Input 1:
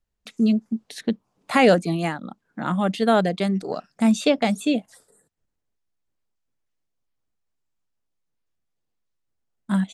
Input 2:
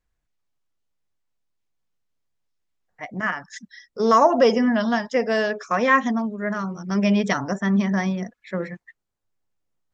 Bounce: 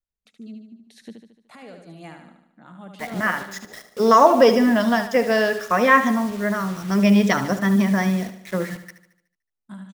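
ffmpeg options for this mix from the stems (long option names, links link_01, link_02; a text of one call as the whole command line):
ffmpeg -i stem1.wav -i stem2.wav -filter_complex "[0:a]alimiter=limit=-14dB:level=0:latency=1:release=387,tremolo=f=0.94:d=0.51,volume=-13.5dB,asplit=2[link_01][link_02];[link_02]volume=-6dB[link_03];[1:a]acrusher=bits=6:mix=0:aa=0.000001,volume=2.5dB,asplit=2[link_04][link_05];[link_05]volume=-12dB[link_06];[link_03][link_06]amix=inputs=2:normalize=0,aecho=0:1:74|148|222|296|370|444|518|592:1|0.52|0.27|0.141|0.0731|0.038|0.0198|0.0103[link_07];[link_01][link_04][link_07]amix=inputs=3:normalize=0" out.wav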